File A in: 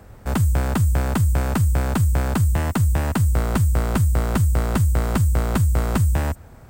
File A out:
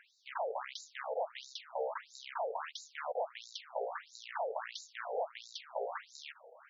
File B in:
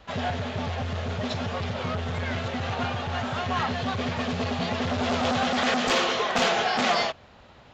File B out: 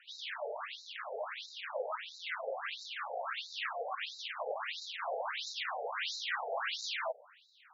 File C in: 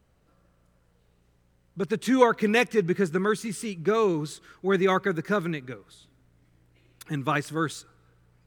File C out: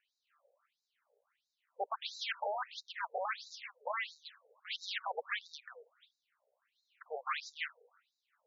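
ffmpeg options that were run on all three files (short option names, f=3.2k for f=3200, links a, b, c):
-af "asoftclip=type=tanh:threshold=-8.5dB,equalizer=f=810:t=o:w=0.51:g=-10.5,aeval=exprs='0.0473*(abs(mod(val(0)/0.0473+3,4)-2)-1)':c=same,aemphasis=mode=reproduction:type=50fm,afftfilt=real='re*between(b*sr/1024,590*pow(5300/590,0.5+0.5*sin(2*PI*1.5*pts/sr))/1.41,590*pow(5300/590,0.5+0.5*sin(2*PI*1.5*pts/sr))*1.41)':imag='im*between(b*sr/1024,590*pow(5300/590,0.5+0.5*sin(2*PI*1.5*pts/sr))/1.41,590*pow(5300/590,0.5+0.5*sin(2*PI*1.5*pts/sr))*1.41)':win_size=1024:overlap=0.75,volume=2.5dB"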